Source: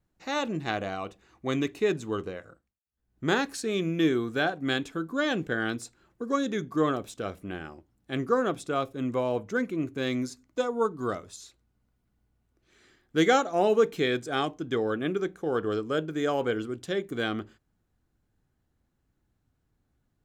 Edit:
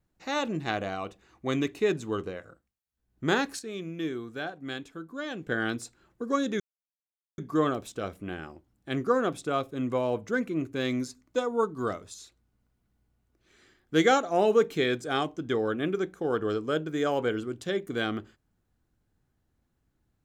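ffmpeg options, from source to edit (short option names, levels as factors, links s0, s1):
-filter_complex "[0:a]asplit=4[s0][s1][s2][s3];[s0]atrim=end=3.592[s4];[s1]atrim=start=3.588:end=5.472,asetpts=PTS-STARTPTS,volume=0.376[s5];[s2]atrim=start=5.468:end=6.6,asetpts=PTS-STARTPTS,afade=t=out:st=1.128:d=0.004:c=hsin,apad=pad_dur=0.78[s6];[s3]atrim=start=6.6,asetpts=PTS-STARTPTS,afade=t=in:d=0.004:c=hsin[s7];[s4][s5]acrossfade=d=0.004:c1=hsin:c2=hsin[s8];[s6][s7]concat=n=2:v=0:a=1[s9];[s8][s9]acrossfade=d=0.004:c1=hsin:c2=hsin"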